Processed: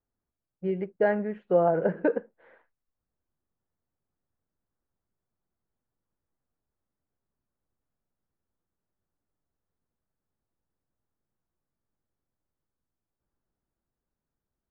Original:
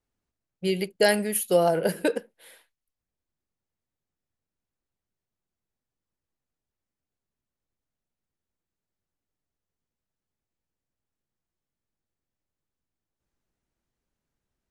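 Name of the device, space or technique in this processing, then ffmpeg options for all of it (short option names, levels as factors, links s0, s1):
action camera in a waterproof case: -af "lowpass=f=1600:w=0.5412,lowpass=f=1600:w=1.3066,dynaudnorm=f=320:g=13:m=2,volume=0.708" -ar 22050 -c:a aac -b:a 96k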